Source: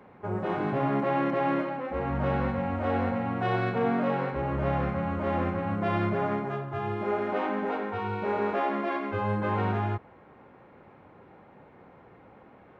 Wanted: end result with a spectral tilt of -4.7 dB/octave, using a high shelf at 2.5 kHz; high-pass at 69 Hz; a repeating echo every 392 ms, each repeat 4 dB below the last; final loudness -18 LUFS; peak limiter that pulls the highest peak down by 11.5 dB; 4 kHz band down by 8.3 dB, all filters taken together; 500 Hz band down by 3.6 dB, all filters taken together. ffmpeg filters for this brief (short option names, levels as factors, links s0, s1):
-af "highpass=69,equalizer=f=500:t=o:g=-4,highshelf=f=2500:g=-8,equalizer=f=4000:t=o:g=-5,alimiter=level_in=1.78:limit=0.0631:level=0:latency=1,volume=0.562,aecho=1:1:392|784|1176|1568|1960|2352|2744|3136|3528:0.631|0.398|0.25|0.158|0.0994|0.0626|0.0394|0.0249|0.0157,volume=7.5"